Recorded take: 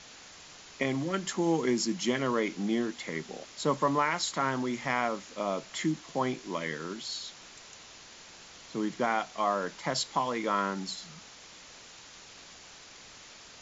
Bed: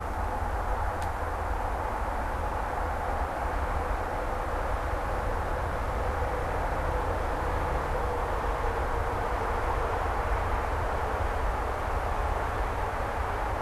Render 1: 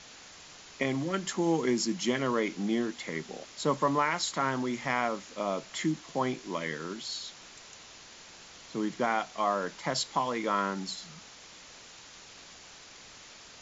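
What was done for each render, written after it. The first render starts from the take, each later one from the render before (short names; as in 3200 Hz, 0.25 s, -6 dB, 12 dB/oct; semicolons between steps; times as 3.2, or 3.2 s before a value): nothing audible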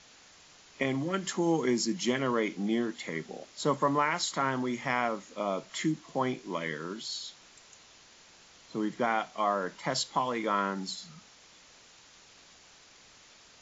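noise print and reduce 6 dB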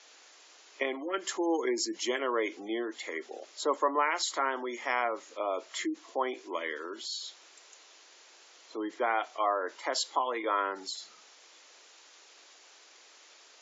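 steep high-pass 320 Hz 36 dB/oct; spectral gate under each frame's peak -30 dB strong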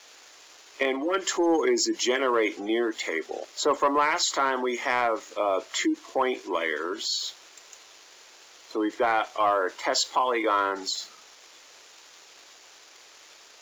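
sample leveller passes 1; in parallel at -1.5 dB: limiter -24.5 dBFS, peak gain reduction 9.5 dB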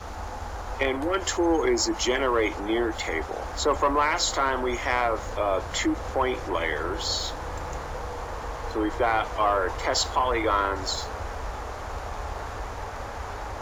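add bed -4.5 dB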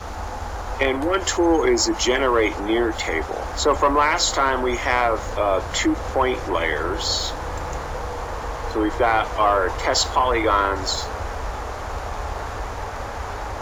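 gain +5 dB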